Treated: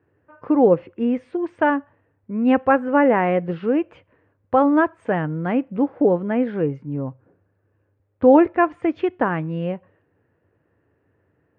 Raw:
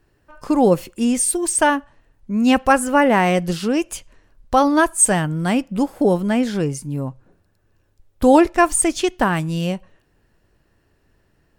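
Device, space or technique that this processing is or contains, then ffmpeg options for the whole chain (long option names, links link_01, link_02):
bass cabinet: -af "highpass=frequency=87:width=0.5412,highpass=frequency=87:width=1.3066,equalizer=frequency=96:width_type=q:width=4:gain=6,equalizer=frequency=200:width_type=q:width=4:gain=-3,equalizer=frequency=290:width_type=q:width=4:gain=4,equalizer=frequency=480:width_type=q:width=4:gain=7,lowpass=frequency=2200:width=0.5412,lowpass=frequency=2200:width=1.3066,volume=-3.5dB"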